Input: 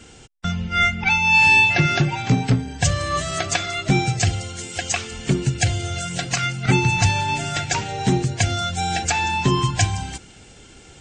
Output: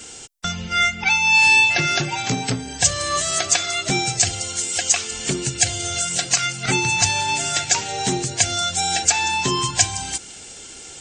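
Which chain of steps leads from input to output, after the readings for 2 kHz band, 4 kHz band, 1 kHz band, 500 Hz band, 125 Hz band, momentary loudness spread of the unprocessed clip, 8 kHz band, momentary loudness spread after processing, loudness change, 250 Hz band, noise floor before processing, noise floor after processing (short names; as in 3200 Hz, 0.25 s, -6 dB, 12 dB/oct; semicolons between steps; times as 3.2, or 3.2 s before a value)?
+0.5 dB, +4.5 dB, -0.5 dB, -1.5 dB, -8.5 dB, 12 LU, +9.0 dB, 12 LU, +1.0 dB, -5.0 dB, -46 dBFS, -39 dBFS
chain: tone controls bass -9 dB, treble +11 dB; in parallel at +2 dB: compressor, threshold -27 dBFS, peak gain reduction 17 dB; on the sum: gain -3.5 dB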